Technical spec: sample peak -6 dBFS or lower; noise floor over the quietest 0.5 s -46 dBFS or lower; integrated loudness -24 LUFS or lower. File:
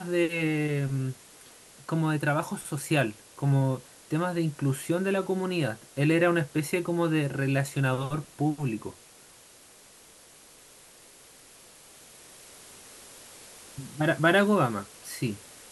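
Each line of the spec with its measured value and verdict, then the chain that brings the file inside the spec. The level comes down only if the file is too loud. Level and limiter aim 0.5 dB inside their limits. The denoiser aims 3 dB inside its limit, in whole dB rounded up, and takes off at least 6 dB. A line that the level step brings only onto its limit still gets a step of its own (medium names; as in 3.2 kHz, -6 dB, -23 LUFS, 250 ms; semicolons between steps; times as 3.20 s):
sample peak -8.5 dBFS: pass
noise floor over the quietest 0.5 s -54 dBFS: pass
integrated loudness -27.5 LUFS: pass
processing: none needed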